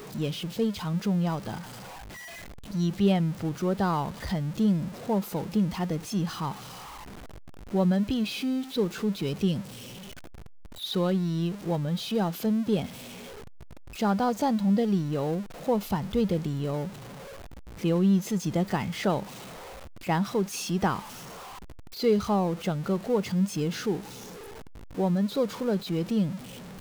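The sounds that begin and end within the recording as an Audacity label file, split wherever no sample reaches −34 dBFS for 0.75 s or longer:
2.700000	6.520000	sound
7.730000	9.610000	sound
10.820000	12.860000	sound
13.990000	16.880000	sound
17.830000	19.230000	sound
20.080000	20.990000	sound
21.990000	24.000000	sound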